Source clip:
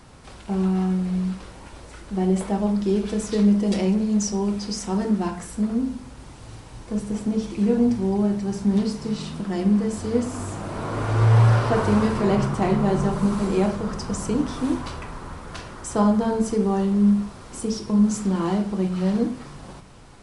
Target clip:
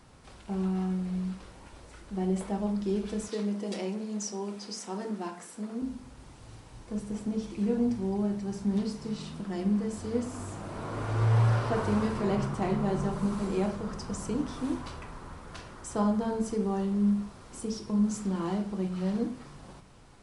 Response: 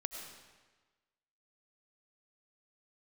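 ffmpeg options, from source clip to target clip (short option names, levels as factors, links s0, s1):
-filter_complex "[0:a]asettb=1/sr,asplit=3[s0][s1][s2];[s0]atrim=end=3.284[s3];[s1]atrim=start=3.28:end=5.82,asetpts=PTS-STARTPTS,afade=t=in:d=0.004:c=qsin,afade=t=out:st=2.536:d=0.004:c=qsin,highpass=280[s4];[s2]atrim=start=5.816[s5];[s3][s4]acrossfade=d=0.004:c1=hsin:c2=qsin[s6];[s6][s5]acrossfade=d=0.004:c1=qsin:c2=hsin,volume=0.398"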